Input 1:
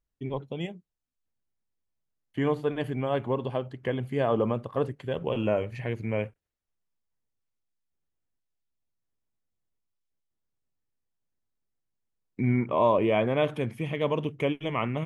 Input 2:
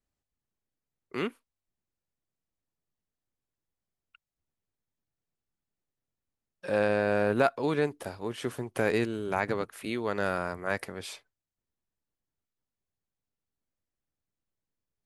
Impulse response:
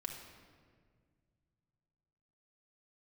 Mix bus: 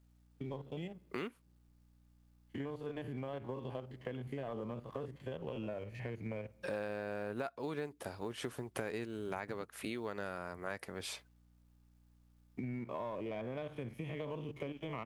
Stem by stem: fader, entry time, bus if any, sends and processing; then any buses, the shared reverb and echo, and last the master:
-12.0 dB, 0.20 s, send -23 dB, spectrogram pixelated in time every 50 ms; waveshaping leveller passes 1; three bands compressed up and down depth 40%
+1.0 dB, 0.00 s, no send, hum 60 Hz, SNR 33 dB; companded quantiser 8-bit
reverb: on, RT60 1.8 s, pre-delay 4 ms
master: compression 5:1, threshold -38 dBFS, peak gain reduction 18 dB

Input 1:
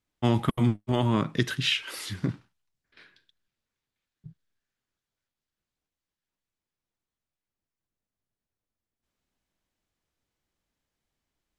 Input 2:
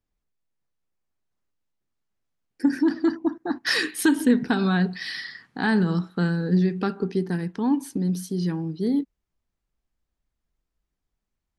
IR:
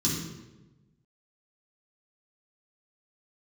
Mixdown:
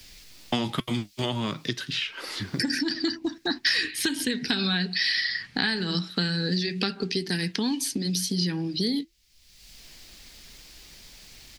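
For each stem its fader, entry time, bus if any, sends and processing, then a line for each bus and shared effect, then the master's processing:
+0.5 dB, 0.30 s, no send, treble shelf 2.8 kHz -9 dB; auto duck -14 dB, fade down 1.50 s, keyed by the second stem
+2.0 dB, 0.00 s, no send, de-esser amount 45%; resonant high shelf 1.6 kHz +10.5 dB, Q 1.5; compression 1.5:1, threshold -27 dBFS, peak gain reduction 6.5 dB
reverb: none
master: peaking EQ 4.7 kHz +9 dB 0.78 oct; flange 0.72 Hz, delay 1.2 ms, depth 3.6 ms, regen -78%; three bands compressed up and down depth 100%

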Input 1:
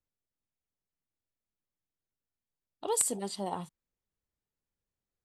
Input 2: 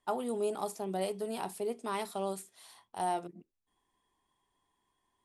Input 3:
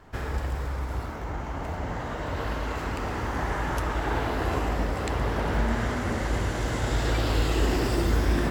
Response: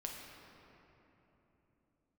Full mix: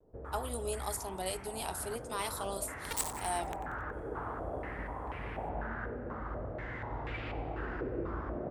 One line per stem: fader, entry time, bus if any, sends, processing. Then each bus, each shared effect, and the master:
-7.0 dB, 0.00 s, no send, echo send -11.5 dB, high-pass 180 Hz 6 dB/octave; bit crusher 4-bit
-2.0 dB, 0.25 s, no send, no echo send, tilt EQ +3 dB/octave
-18.5 dB, 0.00 s, send -4 dB, echo send -12.5 dB, step-sequenced low-pass 4.1 Hz 490–2400 Hz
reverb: on, RT60 3.4 s, pre-delay 6 ms
echo: feedback delay 91 ms, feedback 54%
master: vibrato 0.5 Hz 23 cents

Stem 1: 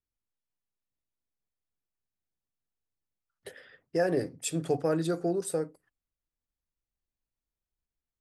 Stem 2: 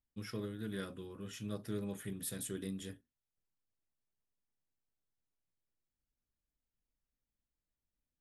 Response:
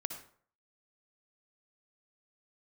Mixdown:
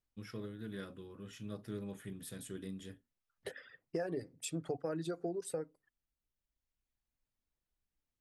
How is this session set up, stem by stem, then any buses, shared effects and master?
+2.0 dB, 0.00 s, no send, reverb removal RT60 1.2 s; compression 5:1, threshold -38 dBFS, peak gain reduction 14 dB
-3.0 dB, 0.00 s, no send, vibrato 0.32 Hz 14 cents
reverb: none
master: treble shelf 6.1 kHz -7 dB

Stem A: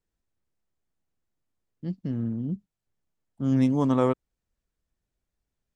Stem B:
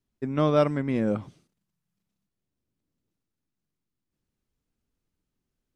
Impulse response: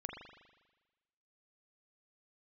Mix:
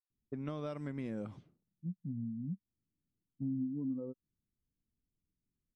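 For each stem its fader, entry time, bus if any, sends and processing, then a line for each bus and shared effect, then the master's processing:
-5.5 dB, 0.00 s, no send, compression 4:1, threshold -23 dBFS, peak gain reduction 5.5 dB; spectral contrast expander 2.5:1
-7.5 dB, 0.10 s, no send, level-controlled noise filter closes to 330 Hz, open at -24 dBFS; tilt EQ +1.5 dB/octave; compression, threshold -24 dBFS, peak gain reduction 7 dB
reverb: none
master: bass shelf 300 Hz +9 dB; compression 3:1, threshold -39 dBFS, peak gain reduction 14.5 dB

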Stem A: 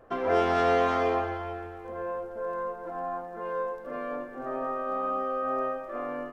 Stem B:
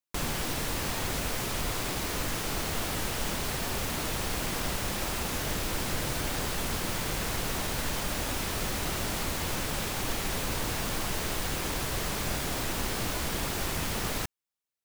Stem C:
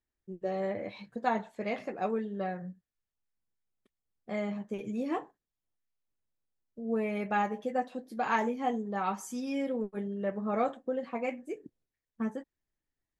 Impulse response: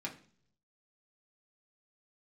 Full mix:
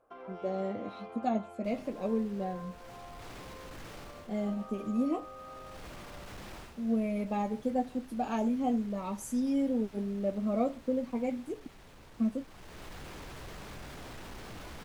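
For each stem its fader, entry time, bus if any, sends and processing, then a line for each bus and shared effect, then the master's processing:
-10.5 dB, 0.00 s, bus A, no send, bass shelf 360 Hz -11.5 dB; band-stop 1.8 kHz, Q 5
-5.0 dB, 1.50 s, bus A, no send, saturation -28 dBFS, distortion -14 dB; auto duck -14 dB, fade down 0.25 s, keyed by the third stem
-3.5 dB, 0.00 s, no bus, no send, fifteen-band graphic EQ 250 Hz +10 dB, 630 Hz +6 dB, 1.6 kHz -10 dB, 10 kHz +9 dB; Shepard-style phaser falling 0.56 Hz
bus A: 0.0 dB, low-pass 3 kHz 6 dB/octave; peak limiter -39 dBFS, peak gain reduction 10.5 dB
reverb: none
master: none

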